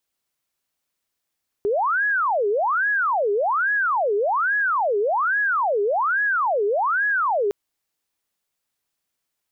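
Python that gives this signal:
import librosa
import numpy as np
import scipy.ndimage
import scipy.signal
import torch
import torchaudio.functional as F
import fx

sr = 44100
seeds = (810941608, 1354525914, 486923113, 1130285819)

y = fx.siren(sr, length_s=5.86, kind='wail', low_hz=402.0, high_hz=1680.0, per_s=1.2, wave='sine', level_db=-18.0)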